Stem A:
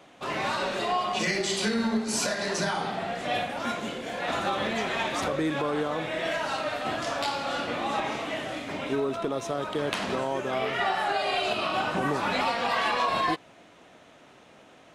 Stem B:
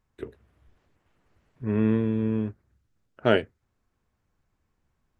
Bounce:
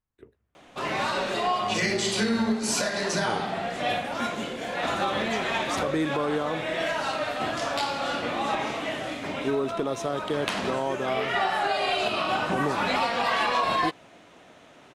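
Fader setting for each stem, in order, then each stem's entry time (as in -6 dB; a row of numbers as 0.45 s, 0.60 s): +1.5 dB, -13.5 dB; 0.55 s, 0.00 s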